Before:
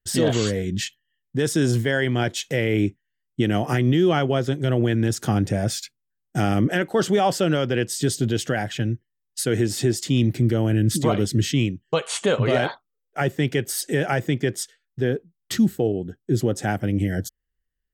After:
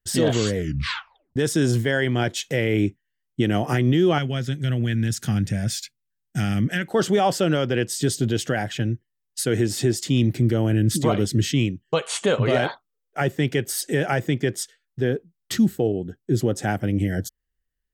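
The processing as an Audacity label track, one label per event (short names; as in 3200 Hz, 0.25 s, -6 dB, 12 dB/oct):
0.560000	0.560000	tape stop 0.80 s
4.180000	6.880000	band shelf 600 Hz -11 dB 2.3 oct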